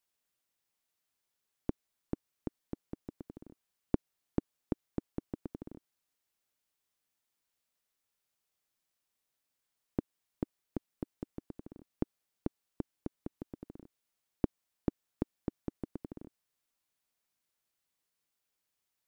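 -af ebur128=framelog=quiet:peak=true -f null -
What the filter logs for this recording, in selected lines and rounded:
Integrated loudness:
  I:         -43.0 LUFS
  Threshold: -53.4 LUFS
Loudness range:
  LRA:         8.0 LU
  Threshold: -64.9 LUFS
  LRA low:   -50.4 LUFS
  LRA high:  -42.5 LUFS
True peak:
  Peak:      -11.3 dBFS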